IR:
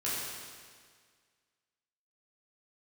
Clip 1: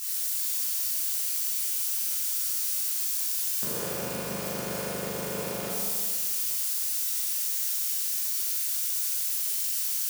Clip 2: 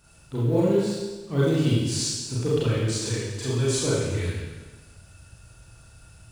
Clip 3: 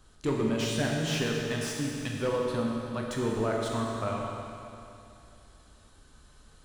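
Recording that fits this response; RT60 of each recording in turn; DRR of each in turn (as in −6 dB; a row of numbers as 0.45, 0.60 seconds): 1; 1.8, 1.3, 2.7 seconds; −9.5, −8.0, −2.0 decibels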